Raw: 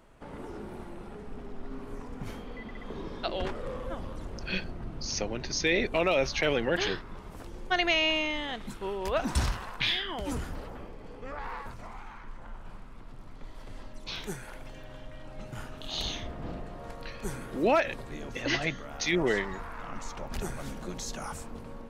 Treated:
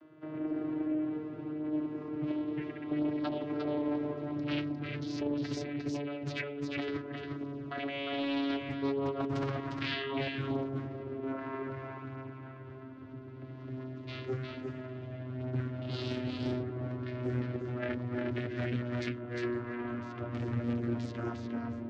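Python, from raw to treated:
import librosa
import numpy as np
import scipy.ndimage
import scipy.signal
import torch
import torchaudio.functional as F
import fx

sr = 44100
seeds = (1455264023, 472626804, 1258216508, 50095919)

p1 = fx.vocoder_glide(x, sr, note=51, semitones=-5)
p2 = fx.peak_eq(p1, sr, hz=830.0, db=-11.5, octaves=0.55)
p3 = p2 + 0.8 * np.pad(p2, (int(3.0 * sr / 1000.0), 0))[:len(p2)]
p4 = fx.over_compress(p3, sr, threshold_db=-35.0, ratio=-1.0)
p5 = fx.air_absorb(p4, sr, metres=210.0)
p6 = p5 + fx.echo_single(p5, sr, ms=354, db=-4.0, dry=0)
p7 = fx.doppler_dist(p6, sr, depth_ms=0.47)
y = F.gain(torch.from_numpy(p7), 1.0).numpy()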